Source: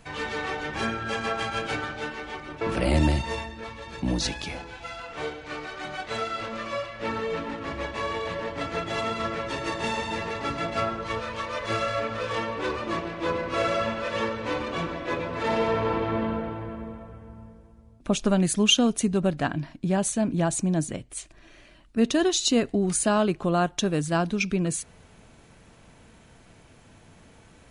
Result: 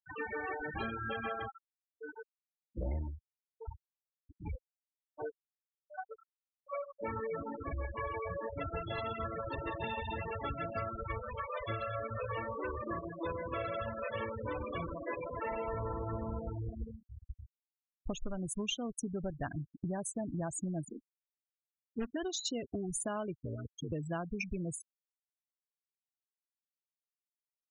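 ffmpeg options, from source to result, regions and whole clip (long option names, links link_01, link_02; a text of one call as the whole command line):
ffmpeg -i in.wav -filter_complex "[0:a]asettb=1/sr,asplit=3[link_01][link_02][link_03];[link_01]atrim=end=1.394[link_04];[link_02]atrim=start=1.39:end=6.8,asetpts=PTS-STARTPTS,afade=type=in:duration=0.004:curve=qsin,afade=type=out:start_time=5.406:duration=0.004:curve=qsin,aemphasis=mode=reproduction:type=75kf,aecho=1:1:309:0.211,atrim=end_sample=238581,aeval=exprs='val(0)*pow(10,-25*(0.5-0.5*cos(2*PI*1.3*n/s))/20)':channel_layout=same[link_05];[link_03]atrim=start=6.796[link_06];[link_04][link_05]acrossfade=duration=0.004:curve1=hsin:curve2=qsin[link_07];[link_07][link_06]acrossfade=duration=0.004:curve1=qsin:curve2=hsin,asettb=1/sr,asplit=3[link_08][link_09][link_10];[link_08]atrim=end=15.114[link_11];[link_09]atrim=start=15.11:end=15.74,asetpts=PTS-STARTPTS,afade=type=in:duration=0.004:curve=qsin,afade=type=out:start_time=0.626:duration=0.004:curve=qsin,equalizer=frequency=110:width_type=o:width=2.7:gain=-6,aeval=exprs='val(0)+0.00355*(sin(2*PI*50*n/s)+sin(2*PI*2*50*n/s)/2+sin(2*PI*3*50*n/s)/3+sin(2*PI*4*50*n/s)/4+sin(2*PI*5*50*n/s)/5)':channel_layout=same[link_12];[link_10]atrim=start=15.736[link_13];[link_11][link_12]acrossfade=duration=0.004:curve1=hsin:curve2=qsin[link_14];[link_14][link_13]acrossfade=duration=0.004:curve1=qsin:curve2=hsin,asettb=1/sr,asplit=3[link_15][link_16][link_17];[link_15]atrim=end=20.894[link_18];[link_16]atrim=start=20.89:end=22.16,asetpts=PTS-STARTPTS,afade=type=in:duration=0.004:curve=qsin,afade=type=out:start_time=1.266:duration=0.004:curve=qsin,asuperpass=centerf=310:order=12:qfactor=1.2,acrusher=bits=2:mode=log:mix=0:aa=0.000001[link_19];[link_17]atrim=start=22.156[link_20];[link_18][link_19]acrossfade=duration=0.004:curve1=hsin:curve2=qsin[link_21];[link_21][link_20]acrossfade=duration=0.004:curve1=qsin:curve2=hsin,asettb=1/sr,asplit=3[link_22][link_23][link_24];[link_22]atrim=end=23.364[link_25];[link_23]atrim=start=23.36:end=23.92,asetpts=PTS-STARTPTS,afade=type=in:duration=0.004:curve=qsin,afade=type=out:start_time=0.556:duration=0.004:curve=qsin,acompressor=threshold=-31dB:ratio=2:attack=3.2:release=140:knee=1:detection=peak,aeval=exprs='val(0)*sin(2*PI*55*n/s)':channel_layout=same,asuperstop=centerf=840:order=8:qfactor=1.6[link_26];[link_24]atrim=start=23.916[link_27];[link_25][link_26]acrossfade=duration=0.004:curve1=hsin:curve2=qsin[link_28];[link_28][link_27]acrossfade=duration=0.004:curve1=qsin:curve2=hsin,afftfilt=real='re*gte(hypot(re,im),0.0708)':imag='im*gte(hypot(re,im),0.0708)':win_size=1024:overlap=0.75,asubboost=boost=6:cutoff=79,acompressor=threshold=-31dB:ratio=6,volume=-3.5dB" out.wav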